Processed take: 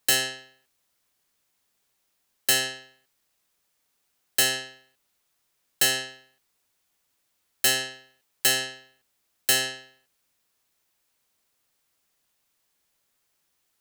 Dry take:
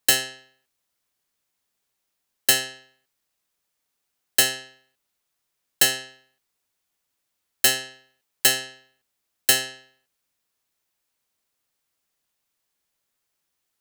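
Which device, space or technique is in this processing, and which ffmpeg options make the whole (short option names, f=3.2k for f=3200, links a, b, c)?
soft clipper into limiter: -af "asoftclip=type=tanh:threshold=-7.5dB,alimiter=limit=-16.5dB:level=0:latency=1:release=167,volume=4.5dB"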